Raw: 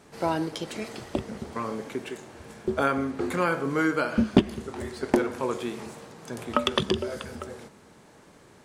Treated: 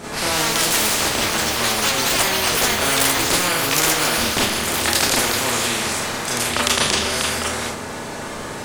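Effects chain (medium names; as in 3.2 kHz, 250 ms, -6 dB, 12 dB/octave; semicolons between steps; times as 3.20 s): Schroeder reverb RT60 0.31 s, combs from 26 ms, DRR -7 dB; ever faster or slower copies 215 ms, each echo +6 st, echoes 3; spectrum-flattening compressor 4:1; trim -1.5 dB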